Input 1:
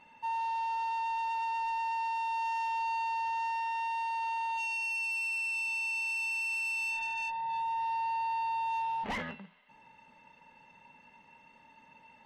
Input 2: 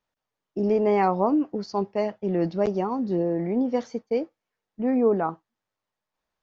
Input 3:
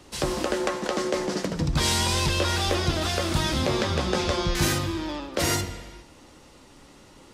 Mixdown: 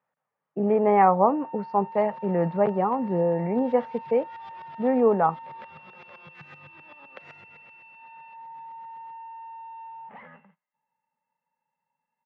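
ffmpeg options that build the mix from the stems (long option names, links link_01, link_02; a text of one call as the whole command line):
ffmpeg -i stem1.wav -i stem2.wav -i stem3.wav -filter_complex "[0:a]agate=range=-18dB:threshold=-51dB:ratio=16:detection=peak,acompressor=threshold=-35dB:ratio=6,adelay=1050,volume=-11dB[link_01];[1:a]volume=-0.5dB,asplit=2[link_02][link_03];[2:a]acompressor=threshold=-31dB:ratio=6,crystalizer=i=6.5:c=0,aeval=exprs='val(0)*pow(10,-20*if(lt(mod(-7.8*n/s,1),2*abs(-7.8)/1000),1-mod(-7.8*n/s,1)/(2*abs(-7.8)/1000),(mod(-7.8*n/s,1)-2*abs(-7.8)/1000)/(1-2*abs(-7.8)/1000))/20)':channel_layout=same,adelay=1800,volume=-13.5dB[link_04];[link_03]apad=whole_len=402943[link_05];[link_04][link_05]sidechaincompress=threshold=-25dB:ratio=8:attack=12:release=471[link_06];[link_01][link_02][link_06]amix=inputs=3:normalize=0,highpass=frequency=120:width=0.5412,highpass=frequency=120:width=1.3066,equalizer=frequency=150:width_type=q:width=4:gain=7,equalizer=frequency=320:width_type=q:width=4:gain=-8,equalizer=frequency=530:width_type=q:width=4:gain=6,equalizer=frequency=830:width_type=q:width=4:gain=7,equalizer=frequency=1200:width_type=q:width=4:gain=6,equalizer=frequency=1800:width_type=q:width=4:gain=4,lowpass=frequency=2500:width=0.5412,lowpass=frequency=2500:width=1.3066" out.wav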